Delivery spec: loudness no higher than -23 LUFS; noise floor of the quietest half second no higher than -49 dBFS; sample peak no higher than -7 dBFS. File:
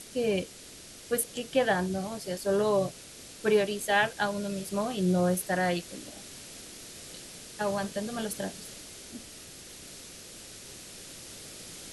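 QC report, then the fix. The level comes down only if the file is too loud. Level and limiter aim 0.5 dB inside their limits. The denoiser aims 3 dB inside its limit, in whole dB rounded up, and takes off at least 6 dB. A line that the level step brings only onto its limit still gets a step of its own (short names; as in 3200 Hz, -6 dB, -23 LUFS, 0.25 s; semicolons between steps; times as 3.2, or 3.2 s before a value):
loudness -29.5 LUFS: OK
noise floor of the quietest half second -48 dBFS: fail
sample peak -12.5 dBFS: OK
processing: denoiser 6 dB, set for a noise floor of -48 dBFS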